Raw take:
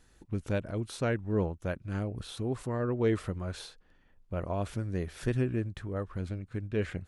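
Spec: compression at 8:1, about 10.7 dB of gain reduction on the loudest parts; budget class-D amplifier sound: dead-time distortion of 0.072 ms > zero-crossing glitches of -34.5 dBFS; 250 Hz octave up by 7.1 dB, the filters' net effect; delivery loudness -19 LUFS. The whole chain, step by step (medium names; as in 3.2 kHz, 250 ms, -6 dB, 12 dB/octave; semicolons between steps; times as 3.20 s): peaking EQ 250 Hz +9 dB; compression 8:1, threshold -30 dBFS; dead-time distortion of 0.072 ms; zero-crossing glitches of -34.5 dBFS; trim +17 dB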